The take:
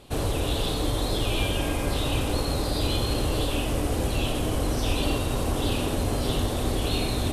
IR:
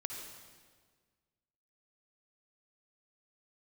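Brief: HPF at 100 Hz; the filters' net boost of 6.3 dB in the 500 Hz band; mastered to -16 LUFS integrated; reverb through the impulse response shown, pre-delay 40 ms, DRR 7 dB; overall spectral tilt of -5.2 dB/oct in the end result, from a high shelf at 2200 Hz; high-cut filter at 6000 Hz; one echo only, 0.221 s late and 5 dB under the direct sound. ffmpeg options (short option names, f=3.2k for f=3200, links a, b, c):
-filter_complex "[0:a]highpass=100,lowpass=6k,equalizer=f=500:t=o:g=8,highshelf=f=2.2k:g=-5,aecho=1:1:221:0.562,asplit=2[a][b];[1:a]atrim=start_sample=2205,adelay=40[c];[b][c]afir=irnorm=-1:irlink=0,volume=-6.5dB[d];[a][d]amix=inputs=2:normalize=0,volume=8dB"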